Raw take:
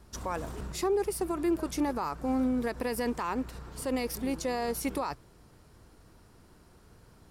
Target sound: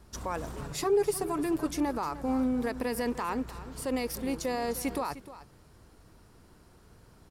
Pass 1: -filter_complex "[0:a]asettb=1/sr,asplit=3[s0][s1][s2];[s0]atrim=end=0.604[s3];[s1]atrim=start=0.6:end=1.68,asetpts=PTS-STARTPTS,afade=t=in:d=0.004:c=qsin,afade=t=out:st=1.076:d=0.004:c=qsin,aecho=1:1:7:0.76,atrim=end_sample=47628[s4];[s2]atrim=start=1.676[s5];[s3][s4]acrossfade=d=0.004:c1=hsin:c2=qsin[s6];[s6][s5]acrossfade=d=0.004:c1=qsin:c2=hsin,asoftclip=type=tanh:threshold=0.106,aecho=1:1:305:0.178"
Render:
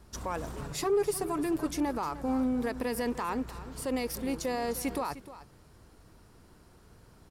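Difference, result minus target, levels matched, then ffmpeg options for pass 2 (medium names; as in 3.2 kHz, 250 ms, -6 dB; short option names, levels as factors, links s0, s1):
saturation: distortion +19 dB
-filter_complex "[0:a]asettb=1/sr,asplit=3[s0][s1][s2];[s0]atrim=end=0.604[s3];[s1]atrim=start=0.6:end=1.68,asetpts=PTS-STARTPTS,afade=t=in:d=0.004:c=qsin,afade=t=out:st=1.076:d=0.004:c=qsin,aecho=1:1:7:0.76,atrim=end_sample=47628[s4];[s2]atrim=start=1.676[s5];[s3][s4]acrossfade=d=0.004:c1=hsin:c2=qsin[s6];[s6][s5]acrossfade=d=0.004:c1=qsin:c2=hsin,asoftclip=type=tanh:threshold=0.355,aecho=1:1:305:0.178"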